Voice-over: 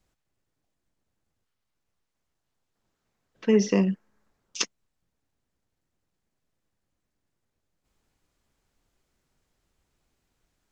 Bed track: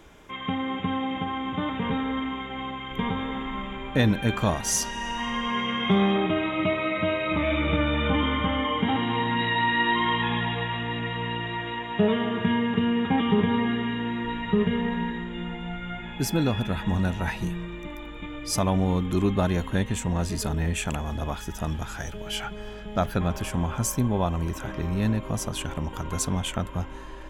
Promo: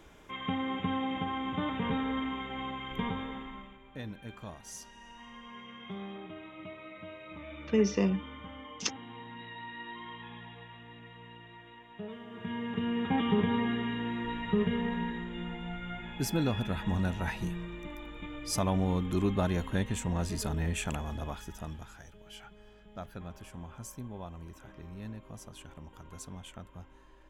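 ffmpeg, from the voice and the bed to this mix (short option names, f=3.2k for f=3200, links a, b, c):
-filter_complex "[0:a]adelay=4250,volume=-5.5dB[a];[1:a]volume=10.5dB,afade=t=out:st=2.87:d=0.92:silence=0.158489,afade=t=in:st=12.27:d=0.91:silence=0.177828,afade=t=out:st=20.93:d=1.11:silence=0.237137[b];[a][b]amix=inputs=2:normalize=0"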